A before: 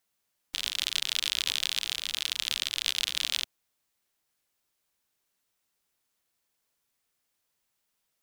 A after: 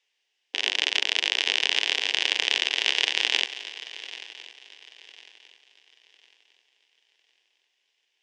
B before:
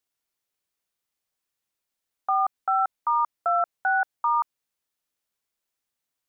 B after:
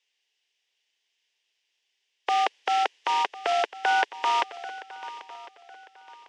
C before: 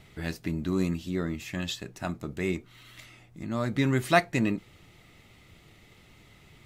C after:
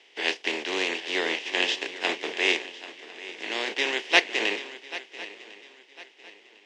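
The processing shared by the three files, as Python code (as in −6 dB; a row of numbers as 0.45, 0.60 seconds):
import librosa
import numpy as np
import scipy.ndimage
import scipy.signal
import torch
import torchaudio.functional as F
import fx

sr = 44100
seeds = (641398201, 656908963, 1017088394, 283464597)

p1 = fx.spec_flatten(x, sr, power=0.36)
p2 = fx.level_steps(p1, sr, step_db=21)
p3 = p1 + (p2 * 10.0 ** (-3.0 / 20.0))
p4 = fx.dmg_noise_colour(p3, sr, seeds[0], colour='blue', level_db=-56.0)
p5 = fx.peak_eq(p4, sr, hz=1200.0, db=-5.0, octaves=0.85)
p6 = fx.rider(p5, sr, range_db=5, speed_s=0.5)
p7 = fx.cabinet(p6, sr, low_hz=360.0, low_slope=24, high_hz=4700.0, hz=(420.0, 610.0, 1300.0, 1900.0, 2900.0, 4200.0), db=(3, -5, -10, 3, 6, -8))
p8 = p7 + fx.echo_swing(p7, sr, ms=1052, ratio=3, feedback_pct=43, wet_db=-12.0, dry=0)
p9 = fx.band_widen(p8, sr, depth_pct=40)
y = p9 * 10.0 ** (-30 / 20.0) / np.sqrt(np.mean(np.square(p9)))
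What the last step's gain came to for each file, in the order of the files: +8.0, +5.0, +3.0 decibels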